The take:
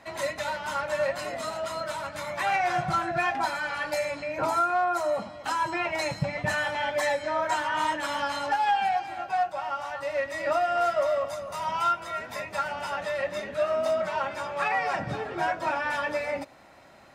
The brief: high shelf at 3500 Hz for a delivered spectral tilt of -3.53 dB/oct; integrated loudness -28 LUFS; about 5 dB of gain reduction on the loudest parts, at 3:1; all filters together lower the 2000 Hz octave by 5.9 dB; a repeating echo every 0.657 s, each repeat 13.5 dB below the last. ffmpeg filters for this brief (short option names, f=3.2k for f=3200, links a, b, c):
-af "equalizer=f=2k:t=o:g=-9,highshelf=f=3.5k:g=4,acompressor=threshold=-28dB:ratio=3,aecho=1:1:657|1314:0.211|0.0444,volume=4dB"